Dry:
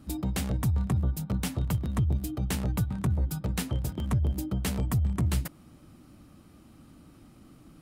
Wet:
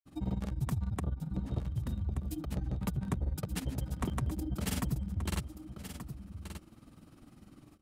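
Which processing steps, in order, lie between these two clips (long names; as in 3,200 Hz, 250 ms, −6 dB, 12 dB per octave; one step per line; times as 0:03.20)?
downward compressor, threshold −27 dBFS, peak gain reduction 6 dB
granular cloud 63 ms, grains 20 per second, pitch spread up and down by 0 semitones
single-tap delay 1,179 ms −10 dB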